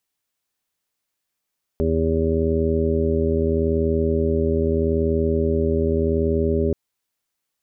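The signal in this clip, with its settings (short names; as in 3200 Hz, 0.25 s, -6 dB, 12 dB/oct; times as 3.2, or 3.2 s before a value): steady additive tone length 4.93 s, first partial 80.8 Hz, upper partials -5.5/-2/-7.5/1.5/-17/-6 dB, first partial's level -22.5 dB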